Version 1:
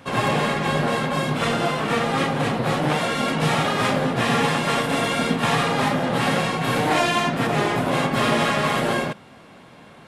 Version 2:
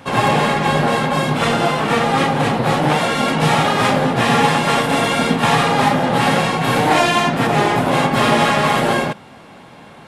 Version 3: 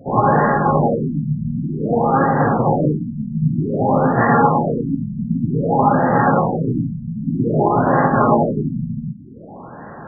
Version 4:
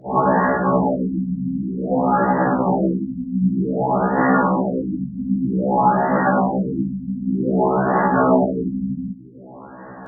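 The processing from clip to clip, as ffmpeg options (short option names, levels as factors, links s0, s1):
-af "equalizer=f=840:w=7.1:g=5.5,volume=1.78"
-af "areverse,acompressor=mode=upward:threshold=0.0355:ratio=2.5,areverse,afftfilt=real='re*lt(b*sr/1024,220*pow(2000/220,0.5+0.5*sin(2*PI*0.53*pts/sr)))':imag='im*lt(b*sr/1024,220*pow(2000/220,0.5+0.5*sin(2*PI*0.53*pts/sr)))':win_size=1024:overlap=0.75,volume=1.19"
-af "afreqshift=30,afftfilt=real='re*1.73*eq(mod(b,3),0)':imag='im*1.73*eq(mod(b,3),0)':win_size=2048:overlap=0.75"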